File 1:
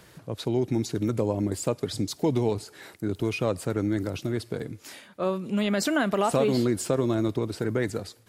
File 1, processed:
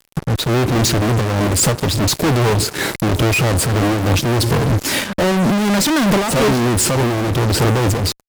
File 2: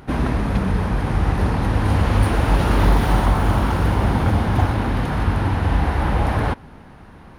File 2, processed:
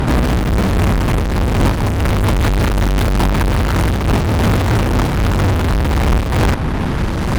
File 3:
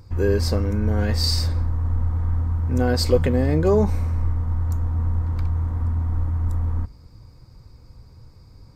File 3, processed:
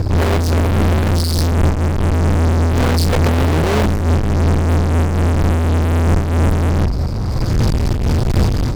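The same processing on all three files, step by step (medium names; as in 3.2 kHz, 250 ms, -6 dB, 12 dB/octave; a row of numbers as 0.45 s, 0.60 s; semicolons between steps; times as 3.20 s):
bass shelf 310 Hz +10.5 dB; band-stop 710 Hz, Q 12; level rider gain up to 16 dB; fuzz box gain 38 dB, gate -40 dBFS; random flutter of the level, depth 60%; normalise loudness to -16 LUFS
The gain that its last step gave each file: +2.0 dB, +3.0 dB, +3.5 dB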